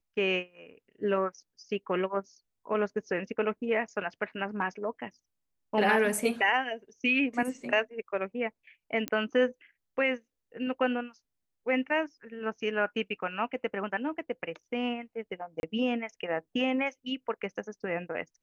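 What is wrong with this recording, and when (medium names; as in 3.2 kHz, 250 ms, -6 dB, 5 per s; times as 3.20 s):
9.08 s: pop -16 dBFS
15.60–15.63 s: dropout 31 ms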